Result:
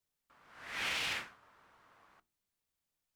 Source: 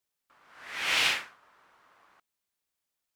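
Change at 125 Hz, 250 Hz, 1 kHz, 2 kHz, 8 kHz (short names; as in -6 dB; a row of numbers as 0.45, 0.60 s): -1.5, -4.0, -7.5, -8.5, -9.5 dB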